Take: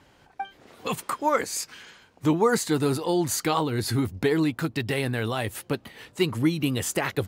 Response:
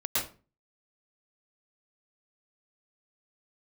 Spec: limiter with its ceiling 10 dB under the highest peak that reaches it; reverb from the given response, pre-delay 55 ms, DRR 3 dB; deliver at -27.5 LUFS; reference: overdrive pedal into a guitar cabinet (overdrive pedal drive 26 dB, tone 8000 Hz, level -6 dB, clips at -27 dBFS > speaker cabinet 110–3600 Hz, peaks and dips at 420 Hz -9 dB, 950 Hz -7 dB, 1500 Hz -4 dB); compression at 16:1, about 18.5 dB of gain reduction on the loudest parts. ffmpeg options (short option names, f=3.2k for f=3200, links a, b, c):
-filter_complex "[0:a]acompressor=threshold=-36dB:ratio=16,alimiter=level_in=7.5dB:limit=-24dB:level=0:latency=1,volume=-7.5dB,asplit=2[a][b];[1:a]atrim=start_sample=2205,adelay=55[c];[b][c]afir=irnorm=-1:irlink=0,volume=-11dB[d];[a][d]amix=inputs=2:normalize=0,asplit=2[e][f];[f]highpass=f=720:p=1,volume=26dB,asoftclip=type=tanh:threshold=-27dB[g];[e][g]amix=inputs=2:normalize=0,lowpass=f=8k:p=1,volume=-6dB,highpass=110,equalizer=f=420:t=q:w=4:g=-9,equalizer=f=950:t=q:w=4:g=-7,equalizer=f=1.5k:t=q:w=4:g=-4,lowpass=f=3.6k:w=0.5412,lowpass=f=3.6k:w=1.3066,volume=9.5dB"